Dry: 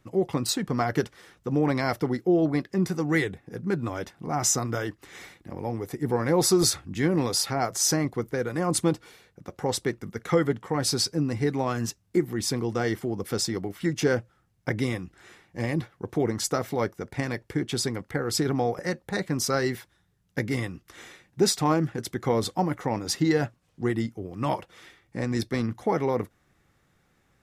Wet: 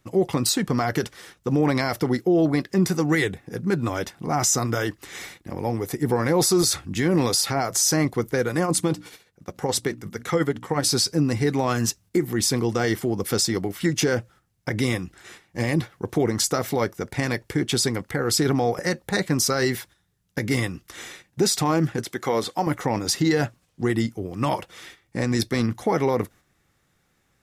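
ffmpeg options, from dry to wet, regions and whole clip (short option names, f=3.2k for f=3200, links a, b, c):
-filter_complex "[0:a]asettb=1/sr,asplit=3[a][b][c];[a]atrim=end=8.644[d];[b]atrim=start=8.64:end=10.89,asetpts=PTS-STARTPTS,afade=t=in:d=0.004:c=qsin,afade=t=out:st=2.246:d=0.004:c=qsin,bandreject=f=60:t=h:w=6,bandreject=f=120:t=h:w=6,bandreject=f=180:t=h:w=6,bandreject=f=240:t=h:w=6,bandreject=f=300:t=h:w=6,tremolo=f=14:d=0.51[e];[c]atrim=start=10.886[f];[d][e]acrossfade=d=0.004:c1=hsin:c2=qsin[g];[g][f]acrossfade=d=0.004:c1=qsin:c2=hsin,asettb=1/sr,asplit=3[h][i][j];[h]atrim=end=22.044[k];[i]atrim=start=22.04:end=22.67,asetpts=PTS-STARTPTS,afade=t=in:d=0.004:c=qsin,afade=t=out:st=0.626:d=0.004:c=qsin,acrossover=split=3100[l][m];[m]acompressor=threshold=-43dB:ratio=4:attack=1:release=60[n];[l][n]amix=inputs=2:normalize=0,highpass=f=420:p=1[o];[j]atrim=start=22.666[p];[k][o]acrossfade=d=0.004:c1=hsin:c2=qsin[q];[q][p]acrossfade=d=0.004:c1=qsin:c2=hsin,highshelf=f=3.1k:g=6.5,agate=range=-7dB:threshold=-50dB:ratio=16:detection=peak,alimiter=limit=-16.5dB:level=0:latency=1:release=54,volume=5dB"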